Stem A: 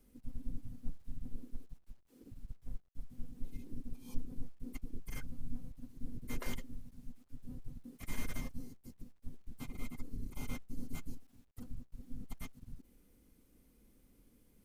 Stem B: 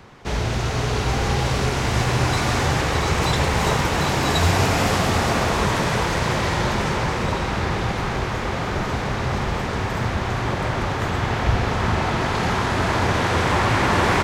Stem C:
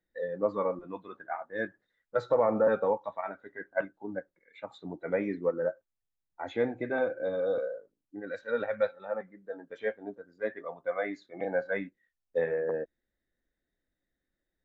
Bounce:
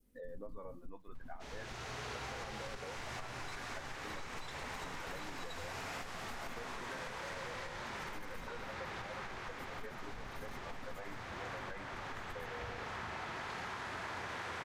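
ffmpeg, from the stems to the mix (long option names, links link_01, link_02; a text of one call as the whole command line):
ffmpeg -i stem1.wav -i stem2.wav -i stem3.wav -filter_complex "[0:a]aeval=exprs='(tanh(39.8*val(0)+0.25)-tanh(0.25))/39.8':channel_layout=same,volume=-5.5dB,asplit=2[link_01][link_02];[1:a]lowshelf=frequency=330:gain=-10,adelay=1150,volume=-13.5dB[link_03];[2:a]acompressor=threshold=-32dB:ratio=6,volume=-12dB[link_04];[link_02]apad=whole_len=678417[link_05];[link_03][link_05]sidechaincompress=threshold=-50dB:ratio=3:attack=16:release=737[link_06];[link_01][link_06][link_04]amix=inputs=3:normalize=0,adynamicequalizer=threshold=0.00355:dfrequency=1700:dqfactor=0.99:tfrequency=1700:tqfactor=0.99:attack=5:release=100:ratio=0.375:range=2:mode=boostabove:tftype=bell,acompressor=threshold=-40dB:ratio=6" out.wav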